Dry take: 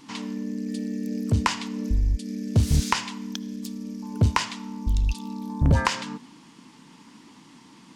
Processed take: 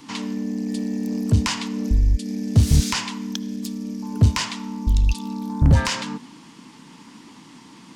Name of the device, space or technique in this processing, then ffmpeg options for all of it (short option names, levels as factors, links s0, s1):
one-band saturation: -filter_complex "[0:a]acrossover=split=220|2900[s0][s1][s2];[s1]asoftclip=type=tanh:threshold=0.0398[s3];[s0][s3][s2]amix=inputs=3:normalize=0,volume=1.78"